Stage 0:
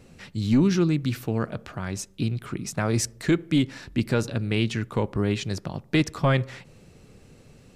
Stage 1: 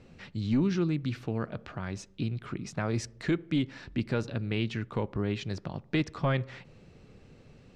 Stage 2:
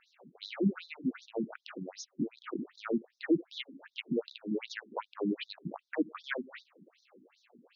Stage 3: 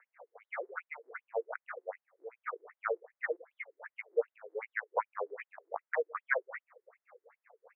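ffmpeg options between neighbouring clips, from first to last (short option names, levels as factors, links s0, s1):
-filter_complex "[0:a]asplit=2[s0][s1];[s1]acompressor=threshold=0.0282:ratio=6,volume=0.794[s2];[s0][s2]amix=inputs=2:normalize=0,lowpass=4500,volume=0.398"
-af "aeval=exprs='if(lt(val(0),0),0.447*val(0),val(0))':c=same,afftfilt=real='re*between(b*sr/1024,240*pow(5000/240,0.5+0.5*sin(2*PI*2.6*pts/sr))/1.41,240*pow(5000/240,0.5+0.5*sin(2*PI*2.6*pts/sr))*1.41)':imag='im*between(b*sr/1024,240*pow(5000/240,0.5+0.5*sin(2*PI*2.6*pts/sr))/1.41,240*pow(5000/240,0.5+0.5*sin(2*PI*2.6*pts/sr))*1.41)':win_size=1024:overlap=0.75,volume=2"
-af "asuperpass=centerf=1000:order=20:qfactor=0.58,volume=2.11"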